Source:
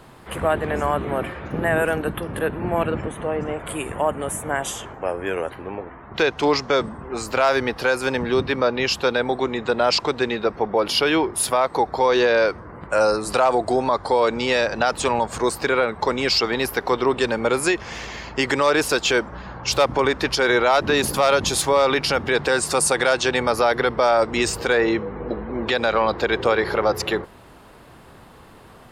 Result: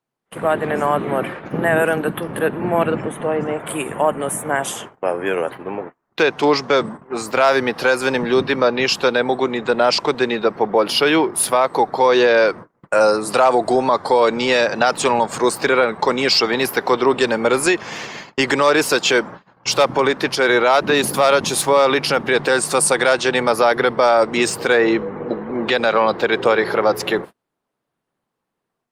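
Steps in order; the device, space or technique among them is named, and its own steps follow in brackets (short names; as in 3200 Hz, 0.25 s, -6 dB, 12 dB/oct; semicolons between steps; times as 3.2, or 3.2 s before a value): 19.69–20.85 HPF 44 Hz 24 dB/oct; video call (HPF 130 Hz 24 dB/oct; AGC gain up to 5 dB; gate -30 dBFS, range -35 dB; Opus 32 kbps 48000 Hz)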